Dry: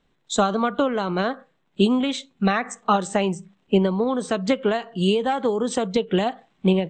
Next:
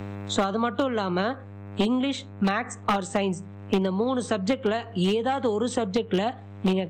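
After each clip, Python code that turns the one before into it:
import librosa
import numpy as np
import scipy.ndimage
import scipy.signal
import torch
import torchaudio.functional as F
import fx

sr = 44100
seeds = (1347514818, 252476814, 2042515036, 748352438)

y = np.minimum(x, 2.0 * 10.0 ** (-13.5 / 20.0) - x)
y = fx.dmg_buzz(y, sr, base_hz=100.0, harmonics=27, level_db=-44.0, tilt_db=-8, odd_only=False)
y = fx.band_squash(y, sr, depth_pct=70)
y = y * librosa.db_to_amplitude(-3.5)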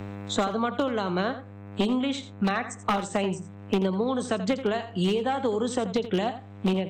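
y = x + 10.0 ** (-12.5 / 20.0) * np.pad(x, (int(84 * sr / 1000.0), 0))[:len(x)]
y = y * librosa.db_to_amplitude(-1.5)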